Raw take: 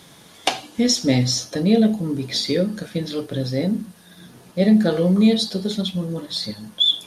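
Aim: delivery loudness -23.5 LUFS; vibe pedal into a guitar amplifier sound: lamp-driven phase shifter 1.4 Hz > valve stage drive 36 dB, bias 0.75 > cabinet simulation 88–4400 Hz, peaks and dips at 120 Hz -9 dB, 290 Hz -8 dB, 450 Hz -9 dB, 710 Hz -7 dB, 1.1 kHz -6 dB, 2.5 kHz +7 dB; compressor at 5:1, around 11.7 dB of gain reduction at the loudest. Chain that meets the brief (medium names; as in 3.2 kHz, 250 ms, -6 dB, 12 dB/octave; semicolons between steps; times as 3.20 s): compression 5:1, threshold -24 dBFS; lamp-driven phase shifter 1.4 Hz; valve stage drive 36 dB, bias 0.75; cabinet simulation 88–4400 Hz, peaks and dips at 120 Hz -9 dB, 290 Hz -8 dB, 450 Hz -9 dB, 710 Hz -7 dB, 1.1 kHz -6 dB, 2.5 kHz +7 dB; trim +20 dB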